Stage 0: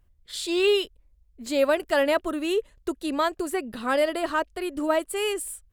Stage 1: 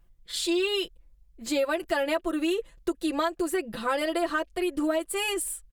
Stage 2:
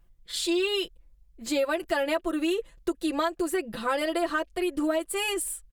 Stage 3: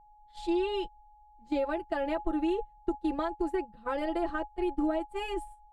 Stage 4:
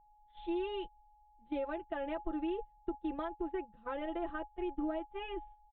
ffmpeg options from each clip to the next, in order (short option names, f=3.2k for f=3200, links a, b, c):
-af "aecho=1:1:5.9:0.85,acompressor=threshold=-23dB:ratio=6"
-af anull
-af "aeval=exprs='val(0)+0.0282*sin(2*PI*840*n/s)':c=same,agate=range=-19dB:threshold=-28dB:ratio=16:detection=peak,aemphasis=mode=reproduction:type=riaa,volume=-7dB"
-af "aresample=8000,aresample=44100,volume=-7dB"